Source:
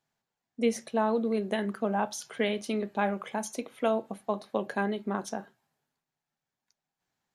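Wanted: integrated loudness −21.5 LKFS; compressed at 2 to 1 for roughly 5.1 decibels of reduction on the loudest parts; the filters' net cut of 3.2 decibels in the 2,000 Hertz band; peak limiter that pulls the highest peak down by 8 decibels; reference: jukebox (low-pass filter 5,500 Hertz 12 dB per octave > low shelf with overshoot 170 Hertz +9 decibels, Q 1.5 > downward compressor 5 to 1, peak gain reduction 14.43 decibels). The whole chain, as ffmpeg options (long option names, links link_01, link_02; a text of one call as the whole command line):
ffmpeg -i in.wav -af "equalizer=frequency=2000:width_type=o:gain=-4,acompressor=threshold=-30dB:ratio=2,alimiter=level_in=2.5dB:limit=-24dB:level=0:latency=1,volume=-2.5dB,lowpass=5500,lowshelf=frequency=170:width_type=q:width=1.5:gain=9,acompressor=threshold=-47dB:ratio=5,volume=29dB" out.wav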